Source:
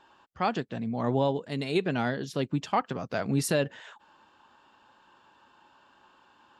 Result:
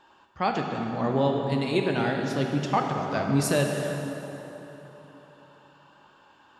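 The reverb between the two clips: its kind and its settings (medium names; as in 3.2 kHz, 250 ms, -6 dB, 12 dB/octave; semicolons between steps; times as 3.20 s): plate-style reverb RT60 3.7 s, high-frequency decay 0.65×, DRR 1.5 dB; trim +1 dB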